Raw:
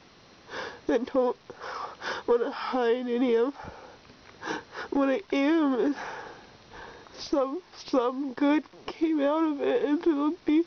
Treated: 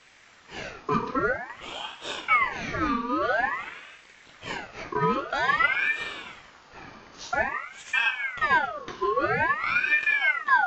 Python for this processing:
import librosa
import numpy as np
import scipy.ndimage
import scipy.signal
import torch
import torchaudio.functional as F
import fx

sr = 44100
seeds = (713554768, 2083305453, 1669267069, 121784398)

y = fx.room_shoebox(x, sr, seeds[0], volume_m3=130.0, walls='mixed', distance_m=0.67)
y = fx.ring_lfo(y, sr, carrier_hz=1400.0, swing_pct=50, hz=0.5)